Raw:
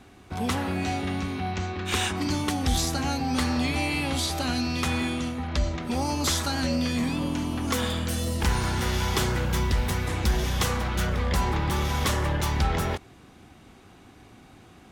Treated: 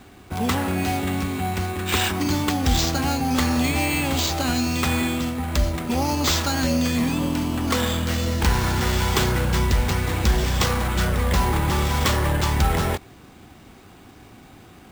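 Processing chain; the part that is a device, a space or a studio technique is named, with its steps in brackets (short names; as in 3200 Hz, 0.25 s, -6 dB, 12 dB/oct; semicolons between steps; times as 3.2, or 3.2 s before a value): early companding sampler (sample-rate reducer 11000 Hz, jitter 0%; companded quantiser 6-bit); gain +4.5 dB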